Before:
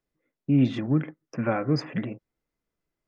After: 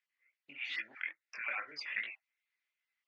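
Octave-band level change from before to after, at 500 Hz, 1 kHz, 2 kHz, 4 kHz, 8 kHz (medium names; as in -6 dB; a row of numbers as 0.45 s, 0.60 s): -27.0 dB, -13.0 dB, +2.5 dB, -4.0 dB, no reading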